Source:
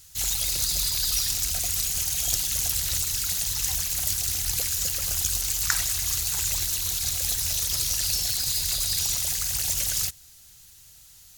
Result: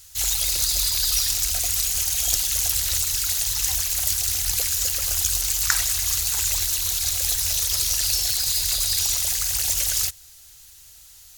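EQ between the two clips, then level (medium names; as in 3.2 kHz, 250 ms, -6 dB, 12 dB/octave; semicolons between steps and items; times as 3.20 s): peaking EQ 170 Hz -13 dB 1 oct; +3.5 dB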